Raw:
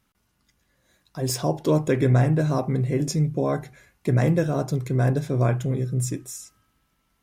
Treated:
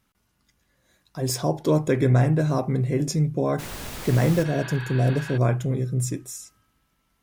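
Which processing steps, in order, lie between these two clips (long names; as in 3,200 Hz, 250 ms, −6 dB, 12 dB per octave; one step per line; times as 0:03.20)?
0:01.28–0:02.11: notch filter 2,800 Hz, Q 13
0:03.58–0:04.42: background noise pink −35 dBFS
0:04.47–0:05.35: healed spectral selection 750–4,700 Hz before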